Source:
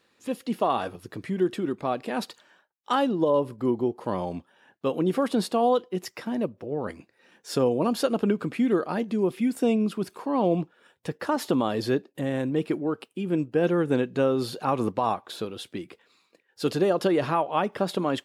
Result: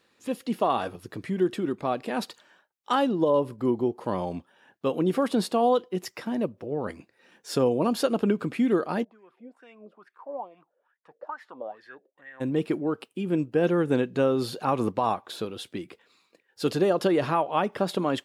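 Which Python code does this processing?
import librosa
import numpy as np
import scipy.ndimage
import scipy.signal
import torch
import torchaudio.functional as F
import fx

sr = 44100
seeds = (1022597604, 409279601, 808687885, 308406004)

y = fx.wah_lfo(x, sr, hz=2.3, low_hz=520.0, high_hz=1900.0, q=8.3, at=(9.03, 12.4), fade=0.02)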